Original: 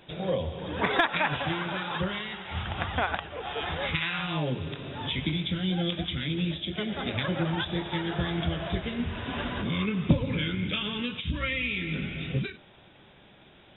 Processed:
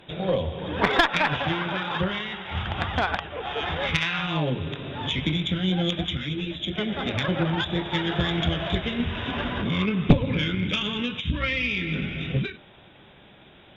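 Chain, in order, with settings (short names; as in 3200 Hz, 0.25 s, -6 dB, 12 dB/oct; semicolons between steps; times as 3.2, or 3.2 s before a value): 7.94–9.31 high shelf 3300 Hz +8 dB; added harmonics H 2 -8 dB, 3 -27 dB, 4 -23 dB, 6 -43 dB, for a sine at -12.5 dBFS; 6.17–6.6 ensemble effect; gain +5 dB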